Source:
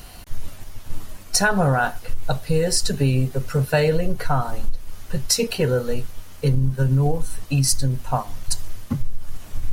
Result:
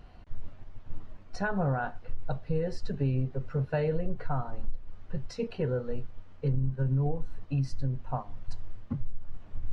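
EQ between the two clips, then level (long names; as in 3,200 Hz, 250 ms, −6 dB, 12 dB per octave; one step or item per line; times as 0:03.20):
head-to-tape spacing loss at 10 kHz 37 dB
−8.5 dB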